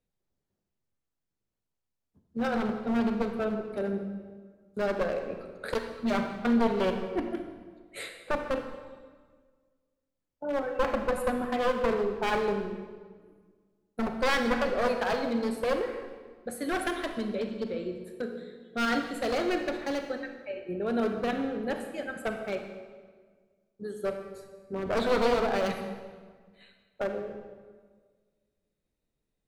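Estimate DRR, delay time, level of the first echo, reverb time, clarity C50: 5.5 dB, no echo, no echo, 1.6 s, 6.5 dB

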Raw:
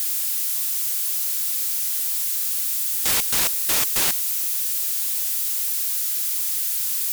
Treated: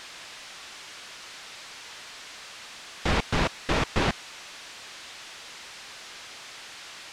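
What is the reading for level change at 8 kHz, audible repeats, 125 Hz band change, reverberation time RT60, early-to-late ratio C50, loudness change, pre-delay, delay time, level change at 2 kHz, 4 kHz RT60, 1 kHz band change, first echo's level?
-20.5 dB, no echo, +12.0 dB, no reverb, no reverb, -13.5 dB, no reverb, no echo, 0.0 dB, no reverb, +4.0 dB, no echo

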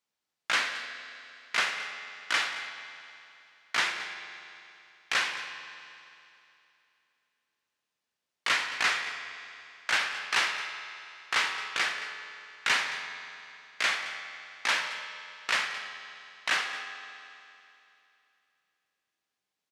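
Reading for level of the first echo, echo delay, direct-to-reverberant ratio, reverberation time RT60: -15.5 dB, 220 ms, 6.0 dB, 2.8 s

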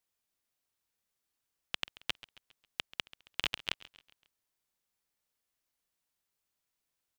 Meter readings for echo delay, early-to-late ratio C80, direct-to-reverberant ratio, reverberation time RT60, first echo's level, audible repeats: 136 ms, no reverb, no reverb, no reverb, -18.5 dB, 3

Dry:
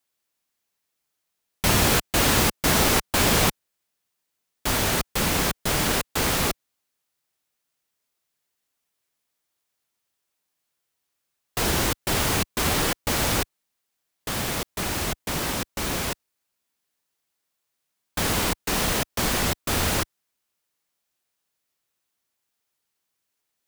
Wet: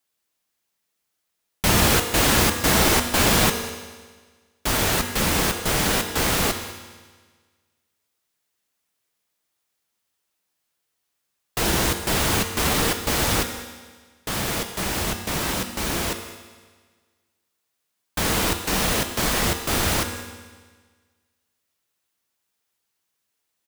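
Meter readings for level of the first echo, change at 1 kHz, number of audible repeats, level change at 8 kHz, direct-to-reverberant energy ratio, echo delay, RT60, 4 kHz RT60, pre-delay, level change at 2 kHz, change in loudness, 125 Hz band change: -18.0 dB, +2.0 dB, 1, +2.0 dB, 6.0 dB, 198 ms, 1.5 s, 1.5 s, 4 ms, +2.0 dB, +2.0 dB, +1.5 dB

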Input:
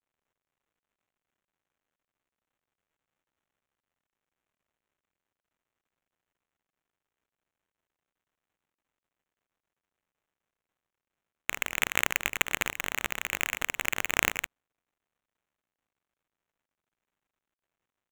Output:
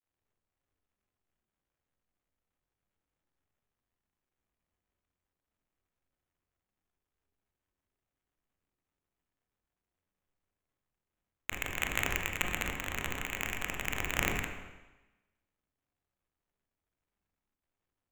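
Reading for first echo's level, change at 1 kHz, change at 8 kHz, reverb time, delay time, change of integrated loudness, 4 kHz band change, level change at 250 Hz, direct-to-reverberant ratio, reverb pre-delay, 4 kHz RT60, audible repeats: no echo, -4.0 dB, -6.0 dB, 1.1 s, no echo, -5.0 dB, -5.5 dB, +1.5 dB, 1.5 dB, 22 ms, 1.0 s, no echo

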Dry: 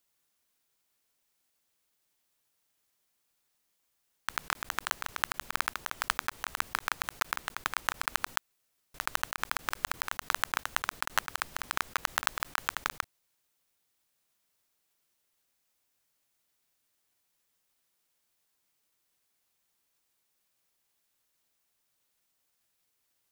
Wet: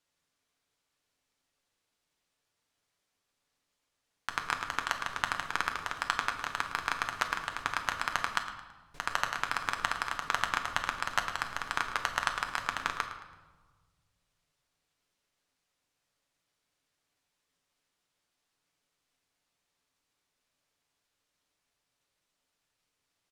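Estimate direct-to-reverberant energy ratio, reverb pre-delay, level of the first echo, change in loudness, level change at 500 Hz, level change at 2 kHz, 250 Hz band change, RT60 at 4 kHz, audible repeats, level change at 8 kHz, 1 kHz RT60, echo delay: 4.0 dB, 7 ms, -14.0 dB, +0.5 dB, +1.5 dB, +1.0 dB, +2.0 dB, 0.90 s, 2, -4.0 dB, 1.3 s, 110 ms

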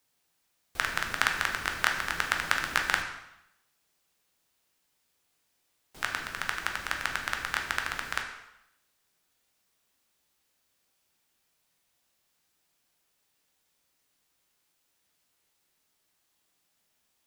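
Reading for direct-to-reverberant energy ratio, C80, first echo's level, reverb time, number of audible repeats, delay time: 2.0 dB, 8.5 dB, no echo, 0.80 s, no echo, no echo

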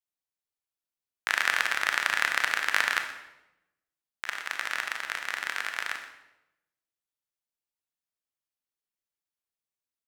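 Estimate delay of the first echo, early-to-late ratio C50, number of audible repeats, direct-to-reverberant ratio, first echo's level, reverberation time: 124 ms, 6.5 dB, 1, 4.5 dB, -15.5 dB, 0.90 s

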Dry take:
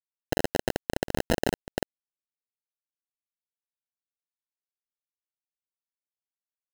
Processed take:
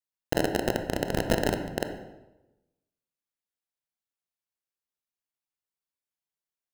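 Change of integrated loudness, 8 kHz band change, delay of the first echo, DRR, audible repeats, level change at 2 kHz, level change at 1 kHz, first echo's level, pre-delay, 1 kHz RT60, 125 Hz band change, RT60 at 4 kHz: +1.5 dB, 0.0 dB, no echo, 5.5 dB, no echo, +1.0 dB, +1.5 dB, no echo, 22 ms, 0.95 s, +2.0 dB, 0.75 s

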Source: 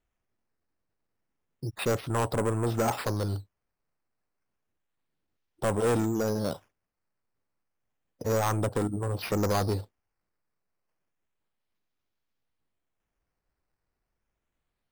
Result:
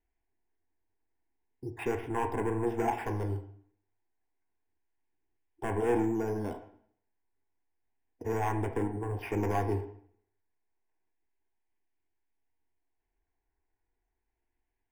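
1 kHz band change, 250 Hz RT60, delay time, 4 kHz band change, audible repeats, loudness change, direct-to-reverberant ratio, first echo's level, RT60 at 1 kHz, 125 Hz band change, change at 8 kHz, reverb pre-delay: -1.5 dB, 0.65 s, no echo, -14.5 dB, no echo, -3.5 dB, 5.5 dB, no echo, 0.60 s, -5.5 dB, -14.0 dB, 6 ms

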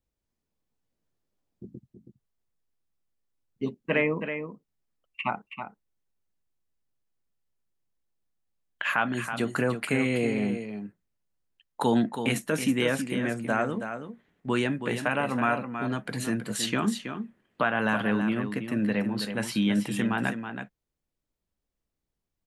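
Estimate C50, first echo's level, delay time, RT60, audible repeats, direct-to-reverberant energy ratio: no reverb, -8.5 dB, 324 ms, no reverb, 1, no reverb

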